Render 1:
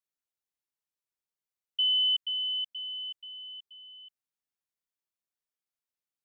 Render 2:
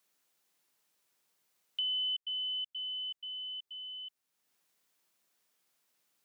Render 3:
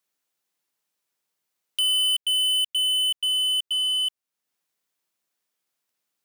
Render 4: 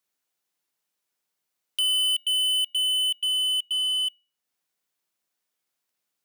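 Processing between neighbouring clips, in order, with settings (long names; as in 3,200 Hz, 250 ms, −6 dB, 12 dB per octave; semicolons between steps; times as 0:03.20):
multiband upward and downward compressor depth 70%; level −4.5 dB
leveller curve on the samples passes 5; level +5.5 dB
tuned comb filter 740 Hz, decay 0.41 s, mix 60%; level +6.5 dB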